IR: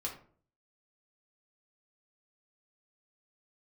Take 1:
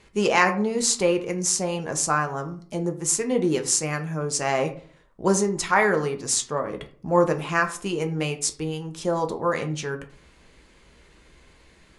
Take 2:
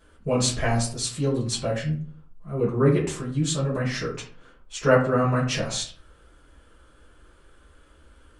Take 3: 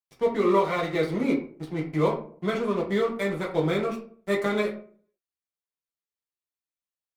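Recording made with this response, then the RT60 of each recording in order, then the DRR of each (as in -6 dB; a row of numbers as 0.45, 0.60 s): 3; 0.50, 0.50, 0.50 s; 5.0, -7.5, -2.5 dB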